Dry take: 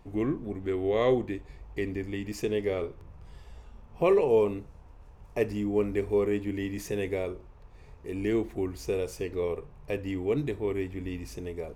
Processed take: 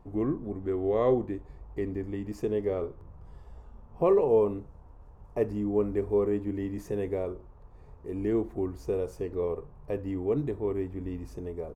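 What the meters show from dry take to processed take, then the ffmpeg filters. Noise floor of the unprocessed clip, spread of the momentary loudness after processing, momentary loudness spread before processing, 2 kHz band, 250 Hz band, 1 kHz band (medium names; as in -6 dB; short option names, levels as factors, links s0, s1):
-52 dBFS, 14 LU, 14 LU, -10.0 dB, 0.0 dB, 0.0 dB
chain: -af "firequalizer=gain_entry='entry(1100,0);entry(2300,-13);entry(8100,-10)':delay=0.05:min_phase=1"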